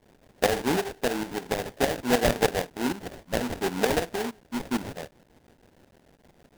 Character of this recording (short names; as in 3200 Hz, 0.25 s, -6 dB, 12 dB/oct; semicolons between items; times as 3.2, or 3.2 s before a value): a quantiser's noise floor 10-bit, dither triangular; tremolo saw up 6.5 Hz, depth 70%; aliases and images of a low sample rate 1200 Hz, jitter 20%